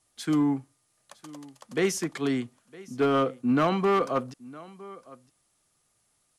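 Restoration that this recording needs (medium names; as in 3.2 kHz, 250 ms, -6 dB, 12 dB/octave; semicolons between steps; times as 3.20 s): clip repair -17 dBFS; expander -63 dBFS, range -21 dB; inverse comb 960 ms -21 dB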